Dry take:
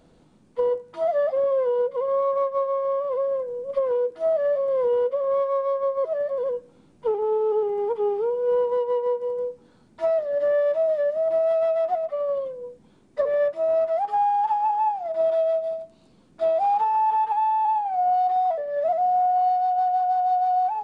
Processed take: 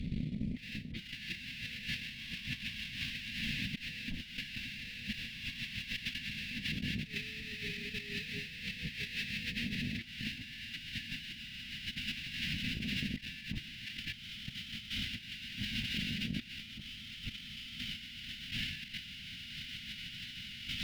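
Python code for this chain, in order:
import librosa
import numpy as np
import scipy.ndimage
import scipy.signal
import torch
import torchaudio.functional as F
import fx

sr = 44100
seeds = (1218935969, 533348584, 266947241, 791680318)

p1 = fx.sample_hold(x, sr, seeds[0], rate_hz=2200.0, jitter_pct=20)
p2 = x + (p1 * 10.0 ** (-8.5 / 20.0))
p3 = scipy.signal.sosfilt(scipy.signal.cheby1(4, 1.0, [240.0, 2100.0], 'bandstop', fs=sr, output='sos'), p2)
p4 = fx.transient(p3, sr, attack_db=9, sustain_db=-10)
p5 = fx.air_absorb(p4, sr, metres=390.0)
p6 = fx.tube_stage(p5, sr, drive_db=19.0, bias=0.5)
p7 = fx.high_shelf(p6, sr, hz=3300.0, db=8.5)
p8 = p7 + fx.echo_alternate(p7, sr, ms=337, hz=820.0, feedback_pct=56, wet_db=-6.5, dry=0)
p9 = fx.over_compress(p8, sr, threshold_db=-57.0, ratio=-1.0)
y = p9 * 10.0 ** (14.0 / 20.0)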